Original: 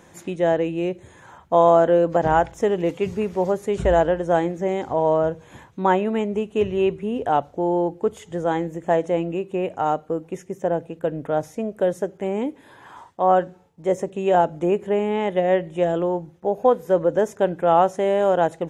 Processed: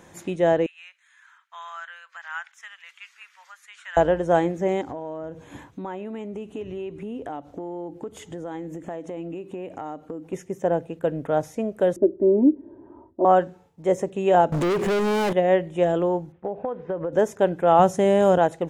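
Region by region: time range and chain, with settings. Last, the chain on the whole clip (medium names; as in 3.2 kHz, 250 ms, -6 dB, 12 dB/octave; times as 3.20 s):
0.66–3.97 s: steep high-pass 1.4 kHz + tilt EQ -3.5 dB/octave
4.81–10.33 s: peaking EQ 290 Hz +11.5 dB 0.26 oct + compression 5:1, threshold -31 dBFS
11.96–13.25 s: resonant low-pass 360 Hz, resonance Q 2.5 + comb 3.2 ms, depth 93%
14.52–15.33 s: compression 2.5:1, threshold -28 dBFS + waveshaping leveller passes 5
16.32–17.13 s: low-pass 2.8 kHz 24 dB/octave + compression 16:1, threshold -23 dBFS
17.79–18.38 s: high-pass 41 Hz + tone controls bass +11 dB, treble +7 dB
whole clip: none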